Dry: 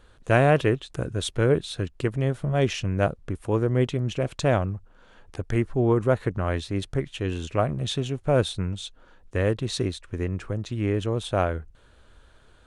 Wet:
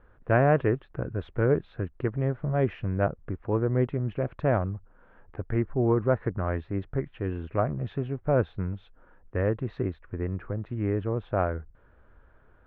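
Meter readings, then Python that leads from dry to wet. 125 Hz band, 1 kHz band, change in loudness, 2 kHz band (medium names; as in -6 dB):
-2.5 dB, -2.5 dB, -2.5 dB, -4.5 dB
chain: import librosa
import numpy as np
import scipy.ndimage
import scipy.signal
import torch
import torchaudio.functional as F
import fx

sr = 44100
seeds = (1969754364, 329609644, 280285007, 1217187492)

y = scipy.signal.sosfilt(scipy.signal.butter(4, 1900.0, 'lowpass', fs=sr, output='sos'), x)
y = F.gain(torch.from_numpy(y), -2.5).numpy()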